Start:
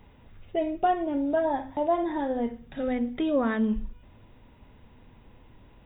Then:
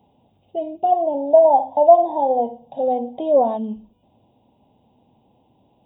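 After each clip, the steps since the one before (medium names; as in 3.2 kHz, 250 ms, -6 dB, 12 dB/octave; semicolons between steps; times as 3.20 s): high-pass 150 Hz 12 dB/octave; time-frequency box 0.92–3.57 s, 460–1100 Hz +12 dB; FFT filter 260 Hz 0 dB, 470 Hz -2 dB, 790 Hz +7 dB, 1.3 kHz -20 dB, 1.9 kHz -24 dB, 2.9 kHz -4 dB; trim -1 dB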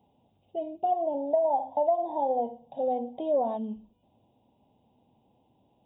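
compression 6:1, threshold -14 dBFS, peak gain reduction 8.5 dB; trim -7.5 dB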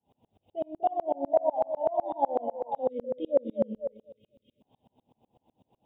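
repeats whose band climbs or falls 248 ms, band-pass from 470 Hz, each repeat 0.7 oct, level -3.5 dB; spectral selection erased 2.88–4.61 s, 620–2000 Hz; sawtooth tremolo in dB swelling 8 Hz, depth 33 dB; trim +7 dB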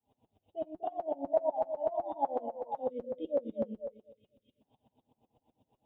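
comb of notches 180 Hz; trim -4 dB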